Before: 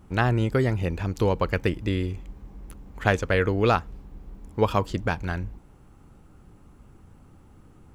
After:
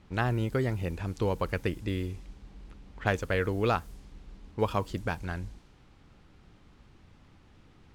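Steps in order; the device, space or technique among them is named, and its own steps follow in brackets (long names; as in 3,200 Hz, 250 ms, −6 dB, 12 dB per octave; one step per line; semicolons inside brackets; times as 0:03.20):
cassette deck with a dynamic noise filter (white noise bed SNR 27 dB; low-pass that shuts in the quiet parts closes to 2,700 Hz, open at −21.5 dBFS)
level −6 dB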